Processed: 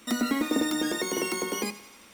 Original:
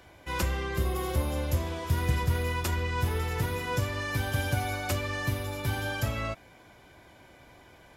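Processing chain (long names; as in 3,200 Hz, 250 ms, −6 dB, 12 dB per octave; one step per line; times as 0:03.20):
change of speed 3.72×
feedback echo with a high-pass in the loop 88 ms, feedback 69%, high-pass 460 Hz, level −16 dB
on a send at −15.5 dB: convolution reverb RT60 0.20 s, pre-delay 3 ms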